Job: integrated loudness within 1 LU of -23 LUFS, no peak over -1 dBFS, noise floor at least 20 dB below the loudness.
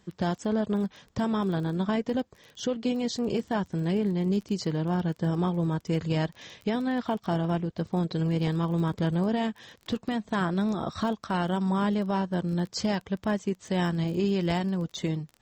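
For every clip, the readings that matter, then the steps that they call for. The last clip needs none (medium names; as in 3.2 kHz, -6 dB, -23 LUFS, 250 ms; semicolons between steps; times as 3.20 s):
tick rate 24 per s; loudness -28.5 LUFS; peak level -17.0 dBFS; loudness target -23.0 LUFS
-> de-click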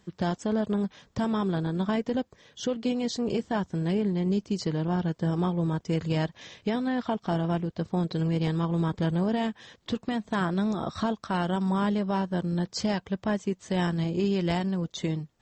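tick rate 0.065 per s; loudness -28.5 LUFS; peak level -16.5 dBFS; loudness target -23.0 LUFS
-> trim +5.5 dB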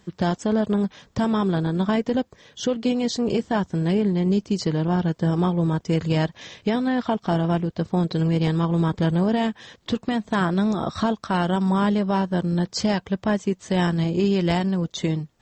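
loudness -23.0 LUFS; peak level -11.0 dBFS; noise floor -60 dBFS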